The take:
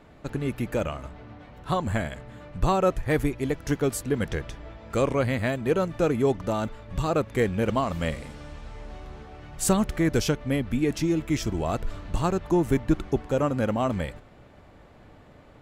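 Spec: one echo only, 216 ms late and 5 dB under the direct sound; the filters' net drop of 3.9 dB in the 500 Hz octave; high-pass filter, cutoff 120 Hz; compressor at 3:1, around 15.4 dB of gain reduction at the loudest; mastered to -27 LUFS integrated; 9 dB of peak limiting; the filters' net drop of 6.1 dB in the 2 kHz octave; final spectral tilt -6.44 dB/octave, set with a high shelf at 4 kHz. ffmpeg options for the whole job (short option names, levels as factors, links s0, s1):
-af "highpass=120,equalizer=f=500:t=o:g=-4.5,equalizer=f=2000:t=o:g=-6,highshelf=f=4000:g=-6.5,acompressor=threshold=0.00794:ratio=3,alimiter=level_in=3.98:limit=0.0631:level=0:latency=1,volume=0.251,aecho=1:1:216:0.562,volume=8.41"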